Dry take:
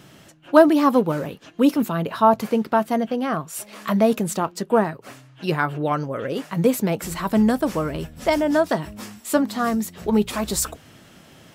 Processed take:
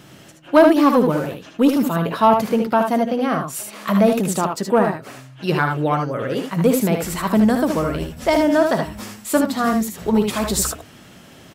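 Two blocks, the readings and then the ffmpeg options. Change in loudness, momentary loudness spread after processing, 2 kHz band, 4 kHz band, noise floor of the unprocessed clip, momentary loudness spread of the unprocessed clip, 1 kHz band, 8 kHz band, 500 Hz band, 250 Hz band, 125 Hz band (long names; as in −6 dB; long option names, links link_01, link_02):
+3.0 dB, 9 LU, +3.0 dB, +3.5 dB, −50 dBFS, 10 LU, +3.0 dB, +3.5 dB, +2.5 dB, +3.0 dB, +4.0 dB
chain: -filter_complex "[0:a]acontrast=39,asplit=2[link_01][link_02];[link_02]aecho=0:1:60|76:0.282|0.531[link_03];[link_01][link_03]amix=inputs=2:normalize=0,volume=-3dB"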